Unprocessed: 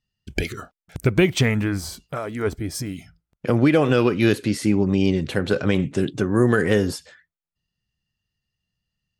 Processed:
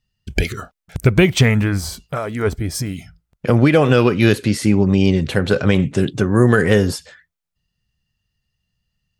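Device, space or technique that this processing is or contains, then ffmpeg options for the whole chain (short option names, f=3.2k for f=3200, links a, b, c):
low shelf boost with a cut just above: -af "lowshelf=f=87:g=6,equalizer=f=310:t=o:w=0.52:g=-4,volume=5dB"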